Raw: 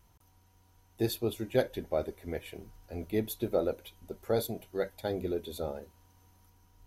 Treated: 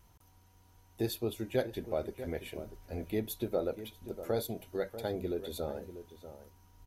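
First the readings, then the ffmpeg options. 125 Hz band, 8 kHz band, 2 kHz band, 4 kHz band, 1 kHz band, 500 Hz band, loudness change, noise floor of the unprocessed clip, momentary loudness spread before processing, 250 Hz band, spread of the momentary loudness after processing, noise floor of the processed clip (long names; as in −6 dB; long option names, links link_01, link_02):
−2.0 dB, −2.0 dB, −2.5 dB, −2.0 dB, −2.5 dB, −2.5 dB, −3.0 dB, −64 dBFS, 14 LU, −2.0 dB, 13 LU, −63 dBFS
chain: -filter_complex "[0:a]asplit=2[link_01][link_02];[link_02]acompressor=threshold=-37dB:ratio=6,volume=2.5dB[link_03];[link_01][link_03]amix=inputs=2:normalize=0,asplit=2[link_04][link_05];[link_05]adelay=641.4,volume=-12dB,highshelf=frequency=4000:gain=-14.4[link_06];[link_04][link_06]amix=inputs=2:normalize=0,volume=-6dB"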